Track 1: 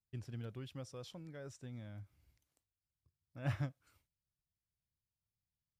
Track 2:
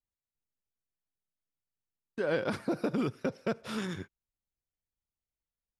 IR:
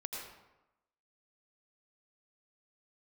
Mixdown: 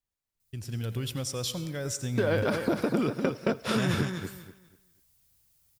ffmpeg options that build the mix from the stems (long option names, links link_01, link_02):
-filter_complex "[0:a]lowshelf=frequency=370:gain=6.5,alimiter=level_in=10.5dB:limit=-24dB:level=0:latency=1:release=198,volume=-10.5dB,crystalizer=i=5.5:c=0,adelay=400,volume=-2dB,asplit=2[link_01][link_02];[link_02]volume=-6.5dB[link_03];[1:a]acompressor=threshold=-38dB:ratio=5,volume=3dB,asplit=2[link_04][link_05];[link_05]volume=-6dB[link_06];[2:a]atrim=start_sample=2205[link_07];[link_03][link_07]afir=irnorm=-1:irlink=0[link_08];[link_06]aecho=0:1:244|488|732|976:1|0.24|0.0576|0.0138[link_09];[link_01][link_04][link_08][link_09]amix=inputs=4:normalize=0,dynaudnorm=framelen=160:gausssize=9:maxgain=10dB"